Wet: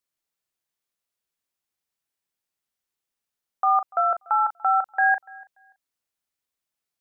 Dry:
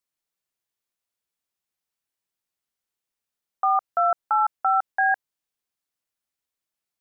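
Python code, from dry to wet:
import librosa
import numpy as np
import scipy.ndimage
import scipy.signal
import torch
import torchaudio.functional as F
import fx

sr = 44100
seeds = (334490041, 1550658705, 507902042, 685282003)

y = fx.doubler(x, sr, ms=38.0, db=-10)
y = fx.echo_feedback(y, sr, ms=290, feedback_pct=20, wet_db=-24.0)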